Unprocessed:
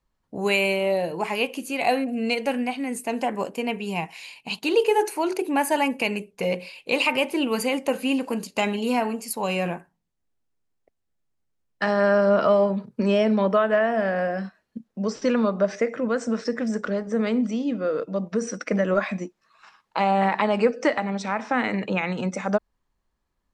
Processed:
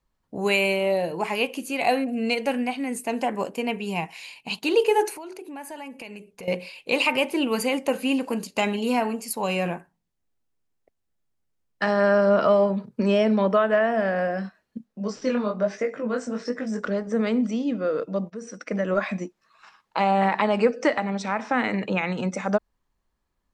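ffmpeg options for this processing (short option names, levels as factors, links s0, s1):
-filter_complex "[0:a]asettb=1/sr,asplit=3[s0][s1][s2];[s0]atrim=end=5.164[s3];[s1]atrim=start=5.16:end=6.48,asetpts=PTS-STARTPTS,afade=t=in:d=0.004:c=qsin,afade=t=out:st=1.316:d=0.004:c=qsin,acompressor=threshold=0.01:ratio=3:attack=3.2:release=140:knee=1:detection=peak[s4];[s2]atrim=start=6.476[s5];[s3][s4]acrossfade=d=0.004:c1=hsin:c2=qsin[s6];[s6][s5]acrossfade=d=0.004:c1=qsin:c2=hsin,asplit=3[s7][s8][s9];[s7]afade=t=out:st=14.84:d=0.02[s10];[s8]flanger=delay=19:depth=5.4:speed=1.2,afade=t=in:st=14.84:d=0.02,afade=t=out:st=16.79:d=0.02[s11];[s9]afade=t=in:st=16.79:d=0.02[s12];[s10][s11][s12]amix=inputs=3:normalize=0,asplit=2[s13][s14];[s13]atrim=end=18.3,asetpts=PTS-STARTPTS,afade=t=out:st=18.296:d=0.004:c=hsin:silence=0.199526[s15];[s14]atrim=start=18.3,asetpts=PTS-STARTPTS,afade=t=in:d=0.83:silence=0.199526[s16];[s15][s16]concat=n=2:v=0:a=1"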